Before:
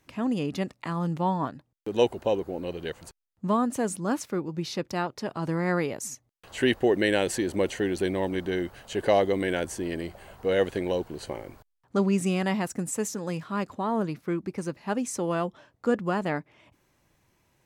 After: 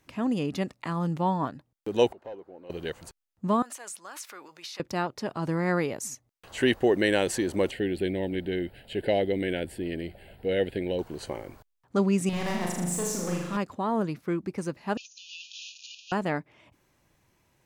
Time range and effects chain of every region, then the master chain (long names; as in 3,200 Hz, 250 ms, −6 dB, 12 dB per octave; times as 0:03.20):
0:02.12–0:02.70: gate with flip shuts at −31 dBFS, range −25 dB + mid-hump overdrive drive 24 dB, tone 1,100 Hz, clips at −27 dBFS
0:03.62–0:04.80: transient designer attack −2 dB, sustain +9 dB + high-pass filter 1,100 Hz + downward compressor 4 to 1, threshold −38 dBFS
0:07.71–0:10.99: high-shelf EQ 10,000 Hz −5.5 dB + phaser with its sweep stopped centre 2,700 Hz, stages 4
0:12.29–0:13.57: hard clipping −29 dBFS + flutter between parallel walls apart 6.8 metres, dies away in 0.97 s
0:14.97–0:16.12: converter with a step at zero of −32 dBFS + linear-phase brick-wall band-pass 2,400–7,000 Hz + compressor whose output falls as the input rises −43 dBFS, ratio −0.5
whole clip: no processing